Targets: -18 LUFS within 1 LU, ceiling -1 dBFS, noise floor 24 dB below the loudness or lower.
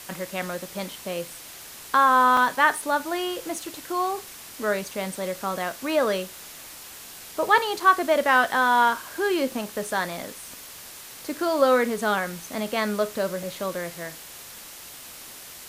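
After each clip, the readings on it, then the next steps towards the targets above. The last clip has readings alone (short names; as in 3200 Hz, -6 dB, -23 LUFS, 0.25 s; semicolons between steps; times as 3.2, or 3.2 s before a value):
dropouts 3; longest dropout 2.2 ms; noise floor -43 dBFS; noise floor target -48 dBFS; loudness -24.0 LUFS; peak -4.5 dBFS; loudness target -18.0 LUFS
-> interpolate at 2.37/7.8/13.43, 2.2 ms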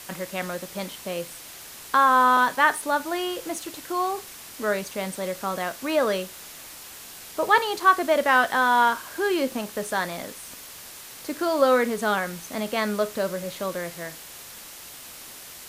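dropouts 0; noise floor -43 dBFS; noise floor target -48 dBFS
-> denoiser 6 dB, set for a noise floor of -43 dBFS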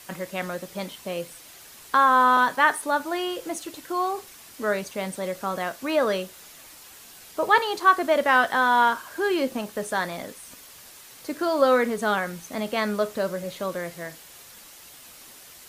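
noise floor -47 dBFS; noise floor target -48 dBFS
-> denoiser 6 dB, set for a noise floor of -47 dBFS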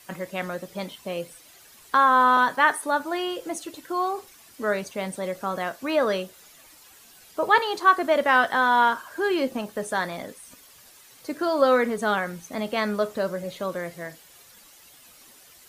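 noise floor -52 dBFS; loudness -24.0 LUFS; peak -4.5 dBFS; loudness target -18.0 LUFS
-> gain +6 dB; limiter -1 dBFS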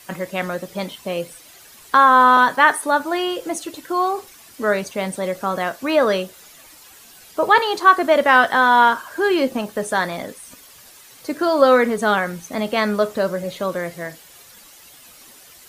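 loudness -18.0 LUFS; peak -1.0 dBFS; noise floor -46 dBFS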